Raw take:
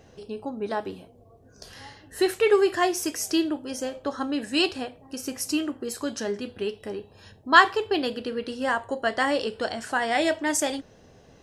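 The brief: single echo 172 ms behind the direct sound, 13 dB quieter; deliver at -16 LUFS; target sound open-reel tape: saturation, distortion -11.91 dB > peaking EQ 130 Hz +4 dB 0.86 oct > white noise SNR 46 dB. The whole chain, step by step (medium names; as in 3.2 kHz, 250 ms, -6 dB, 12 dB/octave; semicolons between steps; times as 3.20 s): delay 172 ms -13 dB; saturation -15 dBFS; peaking EQ 130 Hz +4 dB 0.86 oct; white noise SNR 46 dB; trim +11.5 dB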